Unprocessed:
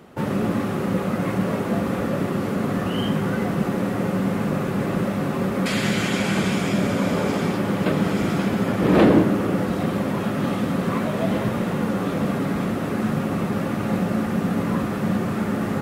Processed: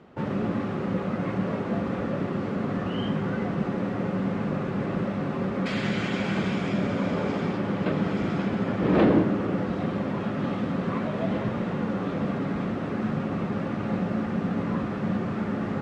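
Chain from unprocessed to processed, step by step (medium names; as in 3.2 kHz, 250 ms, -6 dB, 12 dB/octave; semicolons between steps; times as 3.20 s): distance through air 140 m; trim -4.5 dB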